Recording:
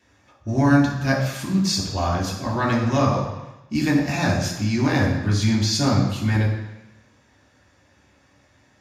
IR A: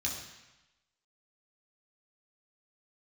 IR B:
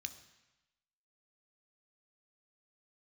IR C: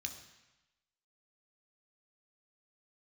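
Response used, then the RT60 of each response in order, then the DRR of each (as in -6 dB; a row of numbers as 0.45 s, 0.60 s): A; 1.0 s, 1.0 s, 1.0 s; -3.5 dB, 8.5 dB, 4.0 dB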